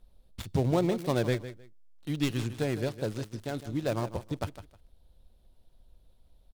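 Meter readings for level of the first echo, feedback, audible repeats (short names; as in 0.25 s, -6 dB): -13.0 dB, 20%, 2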